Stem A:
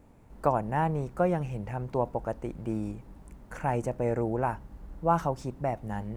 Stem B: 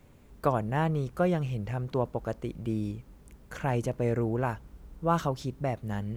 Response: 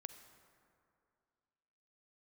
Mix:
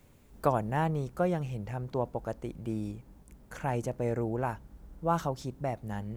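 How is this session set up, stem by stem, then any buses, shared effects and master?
-8.5 dB, 0.00 s, no send, gate with hold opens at -40 dBFS
-3.0 dB, 0.00 s, no send, high shelf 4200 Hz +7 dB; auto duck -6 dB, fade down 1.35 s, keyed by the first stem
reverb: off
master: dry

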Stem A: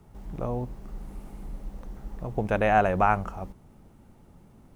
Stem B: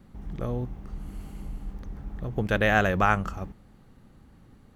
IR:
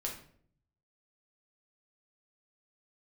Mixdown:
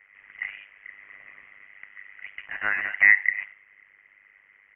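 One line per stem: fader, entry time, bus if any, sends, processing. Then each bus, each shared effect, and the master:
+1.0 dB, 0.00 s, no send, compressor 3:1, threshold -28 dBFS, peak gain reduction 9.5 dB; hard clip -27.5 dBFS, distortion -12 dB
0.0 dB, 1.9 ms, send -7 dB, compressor 2.5:1, threshold -31 dBFS, peak gain reduction 10 dB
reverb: on, RT60 0.60 s, pre-delay 6 ms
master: resonant high-pass 1300 Hz, resonance Q 9.7; AM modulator 100 Hz, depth 95%; inverted band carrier 3300 Hz

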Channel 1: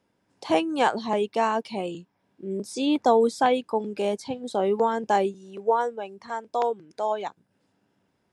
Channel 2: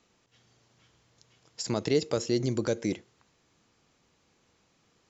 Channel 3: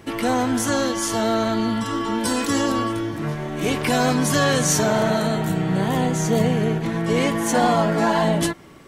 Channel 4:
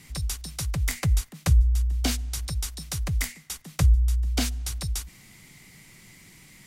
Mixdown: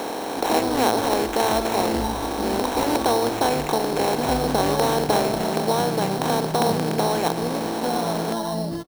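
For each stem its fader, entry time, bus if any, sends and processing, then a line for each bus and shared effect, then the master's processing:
-6.5 dB, 0.00 s, no send, per-bin compression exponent 0.2
+2.5 dB, 0.00 s, no send, negative-ratio compressor -40 dBFS; ring modulator 420 Hz; synth low-pass 1000 Hz, resonance Q 6
-6.5 dB, 0.30 s, no send, LPF 1100 Hz 12 dB/oct
-11.5 dB, 0.45 s, no send, tilt shelf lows -4 dB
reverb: off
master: sample-rate reducer 4800 Hz, jitter 0%

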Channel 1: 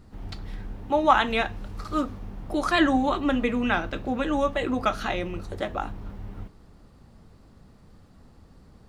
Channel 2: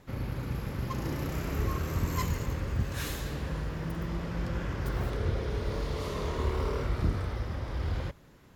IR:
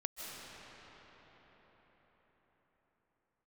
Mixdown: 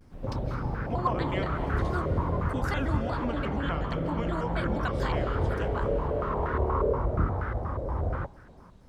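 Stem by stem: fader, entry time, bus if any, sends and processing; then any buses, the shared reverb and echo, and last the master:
-7.0 dB, 0.00 s, send -4 dB, compressor 6:1, threshold -27 dBFS, peak gain reduction 14 dB; shaped vibrato square 4.2 Hz, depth 250 cents
+1.5 dB, 0.15 s, no send, stepped low-pass 8.4 Hz 550–1500 Hz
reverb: on, RT60 5.5 s, pre-delay 0.115 s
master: dry

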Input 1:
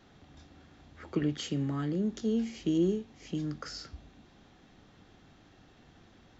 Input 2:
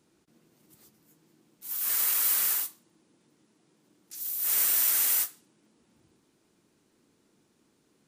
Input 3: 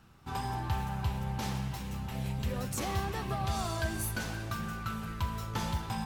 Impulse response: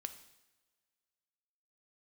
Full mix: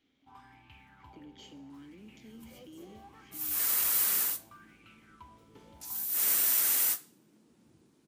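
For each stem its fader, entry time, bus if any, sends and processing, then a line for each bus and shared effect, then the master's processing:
-6.5 dB, 0.00 s, bus A, send -18 dB, HPF 170 Hz; high shelf 3100 Hz +12 dB
-2.5 dB, 1.70 s, no bus, send -21.5 dB, bell 190 Hz +5.5 dB 2.6 oct
-18.0 dB, 0.00 s, bus A, send -7 dB, LFO bell 0.72 Hz 410–2600 Hz +18 dB
bus A: 0.0 dB, vowel filter i; limiter -47.5 dBFS, peak gain reduction 12 dB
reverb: on, pre-delay 3 ms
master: dry

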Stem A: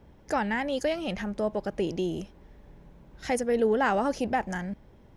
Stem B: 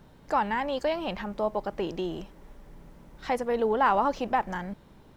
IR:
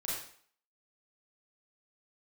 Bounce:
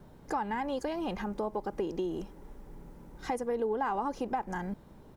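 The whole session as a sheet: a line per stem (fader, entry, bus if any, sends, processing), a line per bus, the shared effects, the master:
-5.0 dB, 0.00 s, no send, HPF 270 Hz 12 dB/oct
+0.5 dB, 2.3 ms, no send, dry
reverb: off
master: bell 3000 Hz -7 dB 2.1 oct; compressor 3:1, threshold -31 dBFS, peak gain reduction 9.5 dB

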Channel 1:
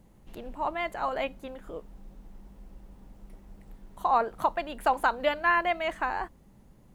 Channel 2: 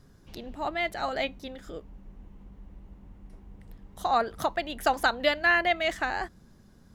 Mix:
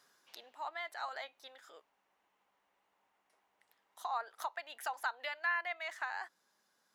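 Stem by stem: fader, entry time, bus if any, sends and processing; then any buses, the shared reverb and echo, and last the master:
-12.0 dB, 0.00 s, no send, spectral gate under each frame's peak -30 dB strong
+0.5 dB, 0.00 s, polarity flipped, no send, compressor 6:1, threshold -30 dBFS, peak gain reduction 11.5 dB; auto duck -8 dB, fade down 0.55 s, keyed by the first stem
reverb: off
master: HPF 980 Hz 12 dB/oct

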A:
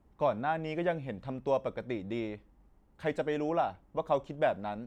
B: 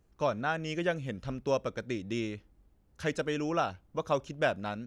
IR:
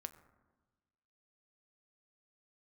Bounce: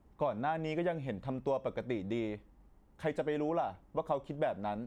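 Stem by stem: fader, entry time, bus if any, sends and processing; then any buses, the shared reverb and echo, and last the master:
+1.0 dB, 0.00 s, no send, dry
-15.0 dB, 0.00 s, no send, HPF 1100 Hz 24 dB/oct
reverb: off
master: compressor, threshold -29 dBFS, peak gain reduction 7.5 dB

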